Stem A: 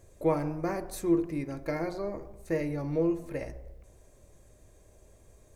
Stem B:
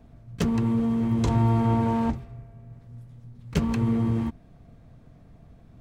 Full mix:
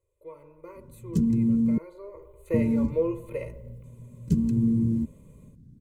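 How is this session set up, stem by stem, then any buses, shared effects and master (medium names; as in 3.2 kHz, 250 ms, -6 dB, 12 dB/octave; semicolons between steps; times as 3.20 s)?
1.89 s -20.5 dB -> 2.48 s -8 dB, 0.00 s, no send, level rider gain up to 9 dB; static phaser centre 1.1 kHz, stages 8
-2.0 dB, 0.75 s, muted 1.78–2.54 s, no send, FFT filter 110 Hz 0 dB, 250 Hz +14 dB, 620 Hz -27 dB, 2.7 kHz -21 dB, 7.6 kHz -4 dB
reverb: none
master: bass shelf 60 Hz -9.5 dB; comb 2 ms, depth 67%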